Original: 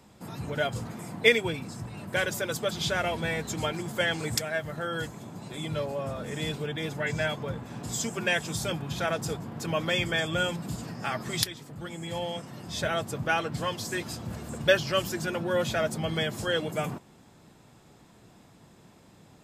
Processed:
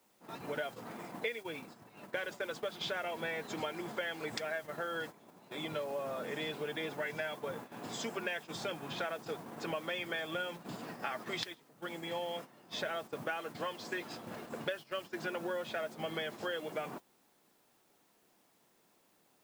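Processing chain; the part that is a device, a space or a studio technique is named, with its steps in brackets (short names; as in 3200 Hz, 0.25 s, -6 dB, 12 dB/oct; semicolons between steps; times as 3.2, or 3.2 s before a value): baby monitor (BPF 320–3400 Hz; compressor 12:1, threshold -34 dBFS, peak gain reduction 19.5 dB; white noise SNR 20 dB; gate -44 dBFS, range -13 dB)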